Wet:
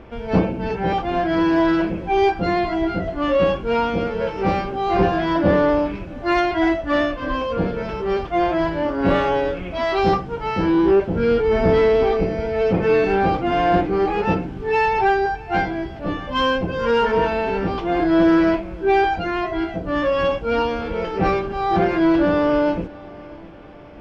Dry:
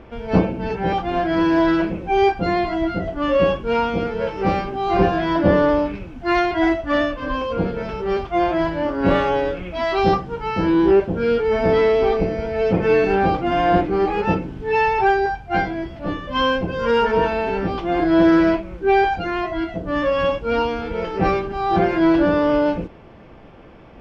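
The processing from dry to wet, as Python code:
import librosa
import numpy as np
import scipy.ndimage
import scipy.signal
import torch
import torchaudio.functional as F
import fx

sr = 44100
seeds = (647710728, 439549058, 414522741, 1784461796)

p1 = fx.low_shelf(x, sr, hz=210.0, db=7.0, at=(11.15, 12.03))
p2 = 10.0 ** (-16.0 / 20.0) * np.tanh(p1 / 10.0 ** (-16.0 / 20.0))
p3 = p1 + (p2 * librosa.db_to_amplitude(-4.0))
p4 = fx.echo_feedback(p3, sr, ms=654, feedback_pct=48, wet_db=-22.0)
y = p4 * librosa.db_to_amplitude(-3.5)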